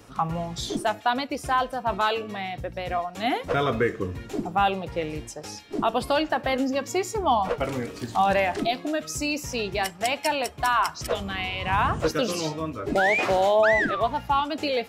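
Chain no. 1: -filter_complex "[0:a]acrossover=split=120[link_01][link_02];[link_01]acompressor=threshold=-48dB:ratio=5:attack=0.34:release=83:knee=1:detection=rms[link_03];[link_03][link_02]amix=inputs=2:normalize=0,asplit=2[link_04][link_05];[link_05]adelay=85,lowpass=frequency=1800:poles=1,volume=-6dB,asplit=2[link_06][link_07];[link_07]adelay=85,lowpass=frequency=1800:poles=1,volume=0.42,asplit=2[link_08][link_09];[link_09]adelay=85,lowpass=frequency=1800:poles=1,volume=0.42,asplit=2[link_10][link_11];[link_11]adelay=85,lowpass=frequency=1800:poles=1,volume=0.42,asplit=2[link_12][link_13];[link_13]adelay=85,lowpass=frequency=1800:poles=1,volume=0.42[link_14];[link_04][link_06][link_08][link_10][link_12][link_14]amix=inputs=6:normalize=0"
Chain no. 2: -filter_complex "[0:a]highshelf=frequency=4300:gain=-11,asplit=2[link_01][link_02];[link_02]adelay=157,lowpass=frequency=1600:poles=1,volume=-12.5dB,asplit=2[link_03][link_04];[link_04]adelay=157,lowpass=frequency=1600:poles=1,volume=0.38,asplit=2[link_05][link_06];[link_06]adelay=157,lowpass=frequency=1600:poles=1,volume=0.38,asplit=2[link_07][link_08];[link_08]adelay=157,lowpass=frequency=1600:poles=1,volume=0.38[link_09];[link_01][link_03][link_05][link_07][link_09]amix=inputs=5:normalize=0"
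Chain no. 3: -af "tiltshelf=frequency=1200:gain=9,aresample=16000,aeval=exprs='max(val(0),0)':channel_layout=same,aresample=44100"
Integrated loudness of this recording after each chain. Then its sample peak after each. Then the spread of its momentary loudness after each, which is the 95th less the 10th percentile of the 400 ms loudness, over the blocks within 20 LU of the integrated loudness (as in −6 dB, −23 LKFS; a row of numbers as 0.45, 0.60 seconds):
−25.0, −26.0, −26.0 LKFS; −8.5, −11.0, −6.0 dBFS; 10, 9, 7 LU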